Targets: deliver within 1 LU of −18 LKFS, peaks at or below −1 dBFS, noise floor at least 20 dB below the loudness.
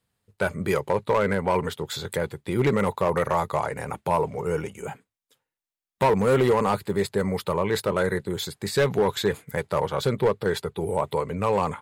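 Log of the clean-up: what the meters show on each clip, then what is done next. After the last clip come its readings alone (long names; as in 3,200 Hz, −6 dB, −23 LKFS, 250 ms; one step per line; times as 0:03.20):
share of clipped samples 1.1%; peaks flattened at −14.5 dBFS; integrated loudness −25.0 LKFS; sample peak −14.5 dBFS; target loudness −18.0 LKFS
→ clipped peaks rebuilt −14.5 dBFS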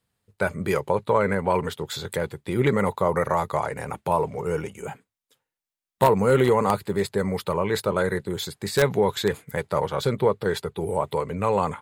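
share of clipped samples 0.0%; integrated loudness −24.5 LKFS; sample peak −5.5 dBFS; target loudness −18.0 LKFS
→ level +6.5 dB
brickwall limiter −1 dBFS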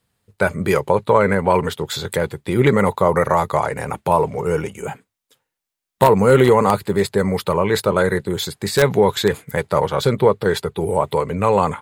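integrated loudness −18.0 LKFS; sample peak −1.0 dBFS; background noise floor −83 dBFS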